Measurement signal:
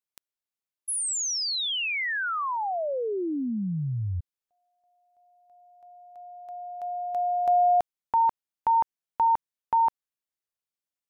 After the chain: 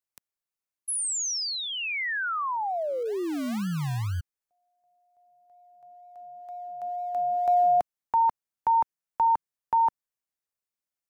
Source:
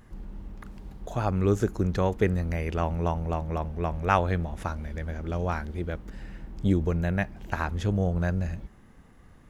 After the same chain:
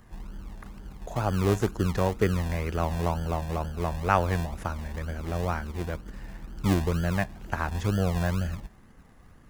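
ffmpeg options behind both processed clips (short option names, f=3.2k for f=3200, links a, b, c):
-filter_complex "[0:a]equalizer=f=3.4k:t=o:w=0.77:g=-4.5,acrossover=split=270|2600[a][b][c];[a]acrusher=samples=40:mix=1:aa=0.000001:lfo=1:lforange=24:lforate=2.1[d];[d][b][c]amix=inputs=3:normalize=0"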